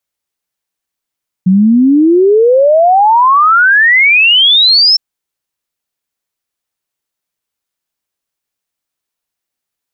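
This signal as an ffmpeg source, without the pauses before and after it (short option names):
-f lavfi -i "aevalsrc='0.631*clip(min(t,3.51-t)/0.01,0,1)*sin(2*PI*180*3.51/log(5400/180)*(exp(log(5400/180)*t/3.51)-1))':d=3.51:s=44100"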